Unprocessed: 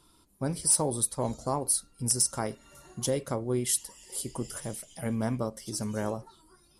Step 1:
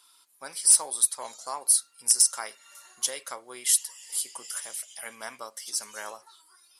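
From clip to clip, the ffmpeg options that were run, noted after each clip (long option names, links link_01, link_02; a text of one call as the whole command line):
ffmpeg -i in.wav -af "highpass=1400,volume=6dB" out.wav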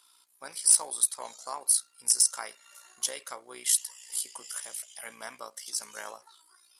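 ffmpeg -i in.wav -af "tremolo=f=59:d=0.571" out.wav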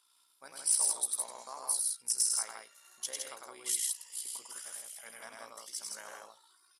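ffmpeg -i in.wav -af "aecho=1:1:99.13|163.3:0.708|0.708,volume=-8.5dB" out.wav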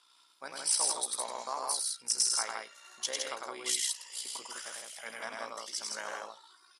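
ffmpeg -i in.wav -af "highpass=130,lowpass=5800,volume=8.5dB" out.wav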